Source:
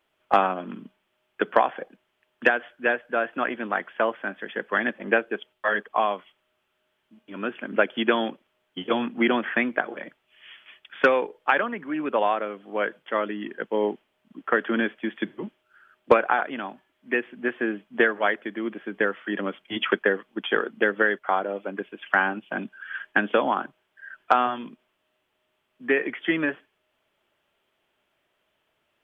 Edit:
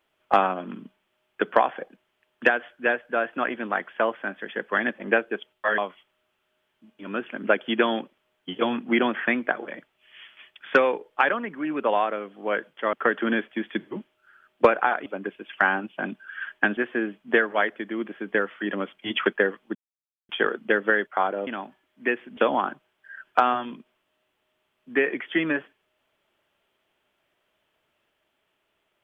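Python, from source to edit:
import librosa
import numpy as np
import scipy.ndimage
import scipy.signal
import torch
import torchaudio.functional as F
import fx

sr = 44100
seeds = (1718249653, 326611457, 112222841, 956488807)

y = fx.edit(x, sr, fx.cut(start_s=5.78, length_s=0.29),
    fx.cut(start_s=13.22, length_s=1.18),
    fx.swap(start_s=16.53, length_s=0.9, other_s=21.59, other_length_s=1.71),
    fx.insert_silence(at_s=20.41, length_s=0.54), tone=tone)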